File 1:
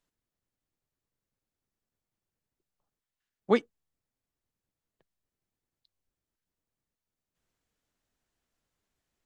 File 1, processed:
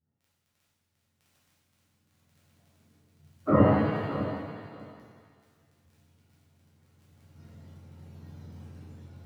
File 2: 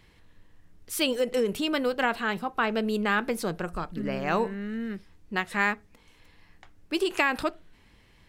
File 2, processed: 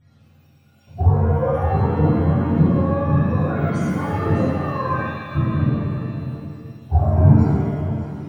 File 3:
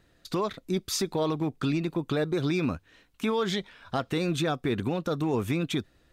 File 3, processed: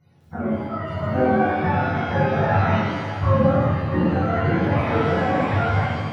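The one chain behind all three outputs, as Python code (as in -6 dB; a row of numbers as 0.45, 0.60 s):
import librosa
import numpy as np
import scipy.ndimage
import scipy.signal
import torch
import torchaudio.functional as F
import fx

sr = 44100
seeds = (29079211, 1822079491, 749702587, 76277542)

p1 = fx.octave_mirror(x, sr, pivot_hz=490.0)
p2 = fx.recorder_agc(p1, sr, target_db=-13.5, rise_db_per_s=6.8, max_gain_db=30)
p3 = fx.lowpass(p2, sr, hz=3500.0, slope=6)
p4 = fx.low_shelf(p3, sr, hz=340.0, db=8.5)
p5 = fx.level_steps(p4, sr, step_db=15)
p6 = p4 + (p5 * 10.0 ** (-1.0 / 20.0))
p7 = fx.dmg_crackle(p6, sr, seeds[0], per_s=15.0, level_db=-43.0)
p8 = 10.0 ** (-2.0 / 20.0) * np.tanh(p7 / 10.0 ** (-2.0 / 20.0))
p9 = p8 * (1.0 - 0.36 / 2.0 + 0.36 / 2.0 * np.cos(2.0 * np.pi * 0.83 * (np.arange(len(p8)) / sr)))
p10 = p9 + fx.echo_feedback(p9, sr, ms=605, feedback_pct=15, wet_db=-12, dry=0)
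p11 = fx.rev_shimmer(p10, sr, seeds[1], rt60_s=1.4, semitones=7, shimmer_db=-8, drr_db=-9.0)
y = p11 * 10.0 ** (-9.0 / 20.0)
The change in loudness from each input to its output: +2.0, +9.0, +8.0 LU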